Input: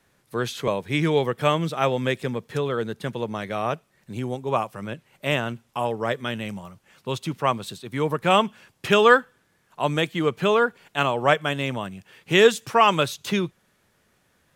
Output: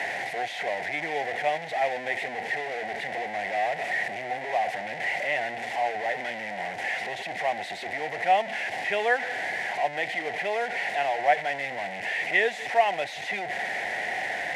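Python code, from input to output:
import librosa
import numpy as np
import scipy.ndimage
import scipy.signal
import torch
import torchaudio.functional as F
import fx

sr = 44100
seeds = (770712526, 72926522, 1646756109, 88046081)

y = fx.delta_mod(x, sr, bps=64000, step_db=-17.5)
y = fx.double_bandpass(y, sr, hz=1200.0, octaves=1.4)
y = y * 10.0 ** (4.0 / 20.0)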